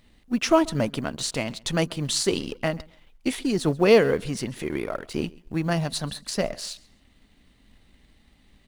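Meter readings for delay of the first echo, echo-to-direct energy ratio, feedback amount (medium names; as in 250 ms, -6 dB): 135 ms, -23.5 dB, no regular repeats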